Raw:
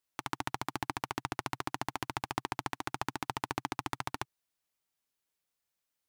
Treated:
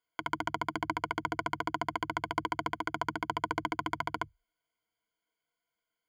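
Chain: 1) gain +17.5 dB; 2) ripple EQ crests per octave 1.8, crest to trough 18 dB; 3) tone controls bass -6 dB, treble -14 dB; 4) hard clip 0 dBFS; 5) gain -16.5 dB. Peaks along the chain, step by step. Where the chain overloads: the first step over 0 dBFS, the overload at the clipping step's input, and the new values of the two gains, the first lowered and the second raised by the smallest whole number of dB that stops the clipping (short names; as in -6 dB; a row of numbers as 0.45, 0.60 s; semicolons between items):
+5.5, +5.5, +3.5, 0.0, -16.5 dBFS; step 1, 3.5 dB; step 1 +13.5 dB, step 5 -12.5 dB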